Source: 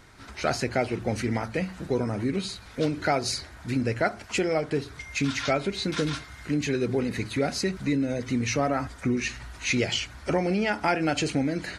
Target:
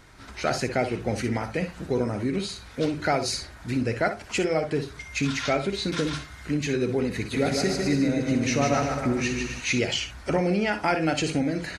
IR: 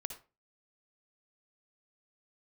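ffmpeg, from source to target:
-filter_complex "[0:a]asplit=3[link_01][link_02][link_03];[link_01]afade=type=out:start_time=7.32:duration=0.02[link_04];[link_02]aecho=1:1:150|262.5|346.9|410.2|457.6:0.631|0.398|0.251|0.158|0.1,afade=type=in:start_time=7.32:duration=0.02,afade=type=out:start_time=9.6:duration=0.02[link_05];[link_03]afade=type=in:start_time=9.6:duration=0.02[link_06];[link_04][link_05][link_06]amix=inputs=3:normalize=0[link_07];[1:a]atrim=start_sample=2205,atrim=end_sample=3087[link_08];[link_07][link_08]afir=irnorm=-1:irlink=0,volume=2.5dB"

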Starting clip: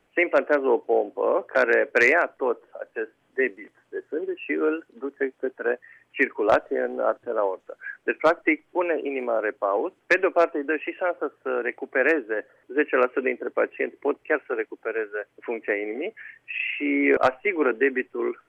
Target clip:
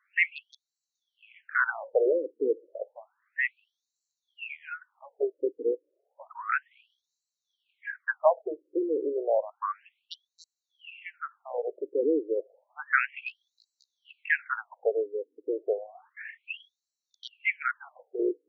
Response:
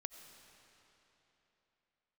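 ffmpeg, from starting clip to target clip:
-filter_complex "[0:a]bandreject=frequency=5000:width=5.2,asettb=1/sr,asplit=3[link_01][link_02][link_03];[link_01]atrim=end=12.914[link_04];[link_02]atrim=start=12.91:end=14.9,asetpts=PTS-STARTPTS,afade=type=in:duration=0.004:curve=qsin,afade=type=out:start_time=1.986:duration=0.004:curve=qsin,acontrast=27[link_05];[link_03]atrim=start=14.896[link_06];[link_04][link_05]acrossfade=duration=0.004:curve1=hsin:curve2=qsin[link_07];[link_07][link_06]acrossfade=duration=0.004:curve1=qsin:curve2=hsin,afftfilt=real='re*between(b*sr/1024,360*pow(5500/360,0.5+0.5*sin(2*PI*0.31*pts/sr))/1.41,360*pow(5500/360,0.5+0.5*sin(2*PI*0.31*pts/sr))*1.41)':imag='im*between(b*sr/1024,360*pow(5500/360,0.5+0.5*sin(2*PI*0.31*pts/sr))/1.41,360*pow(5500/360,0.5+0.5*sin(2*PI*0.31*pts/sr))*1.41)':win_size=1024:overlap=0.75"

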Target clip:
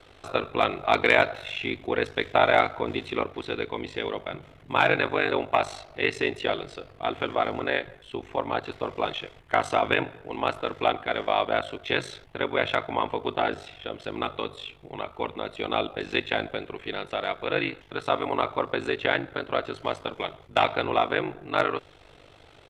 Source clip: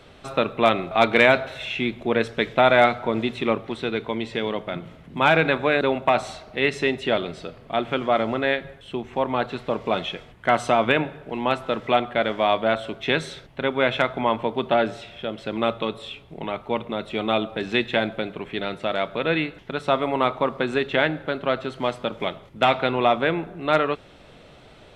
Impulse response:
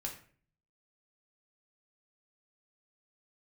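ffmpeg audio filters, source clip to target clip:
-af "bandreject=frequency=580:width=13,aeval=exprs='val(0)*sin(2*PI*25*n/s)':channel_layout=same,atempo=1.1,equalizer=frequency=200:width_type=o:width=0.57:gain=-11.5"

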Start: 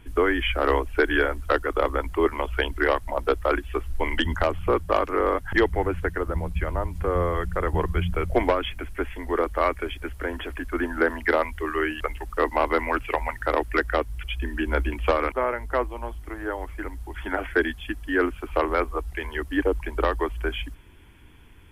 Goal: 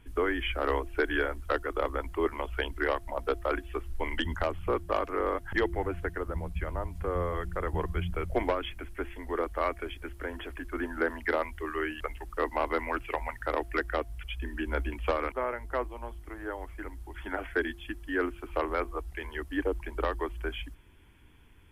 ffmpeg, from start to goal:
ffmpeg -i in.wav -af "bandreject=frequency=343.9:width_type=h:width=4,bandreject=frequency=687.8:width_type=h:width=4,volume=-7dB" out.wav

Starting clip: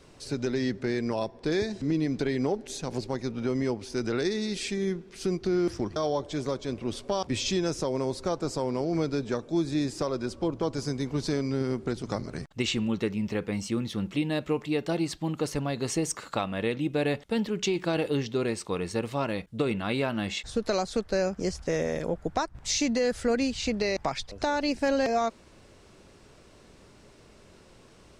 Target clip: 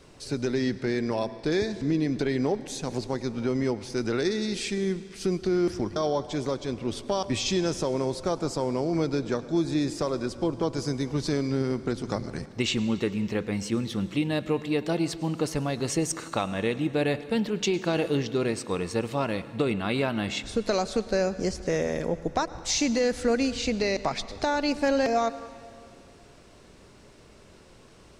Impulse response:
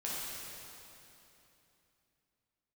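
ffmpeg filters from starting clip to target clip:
-filter_complex "[0:a]asplit=2[link_01][link_02];[1:a]atrim=start_sample=2205,asetrate=61740,aresample=44100,adelay=104[link_03];[link_02][link_03]afir=irnorm=-1:irlink=0,volume=-15.5dB[link_04];[link_01][link_04]amix=inputs=2:normalize=0,volume=1.5dB"

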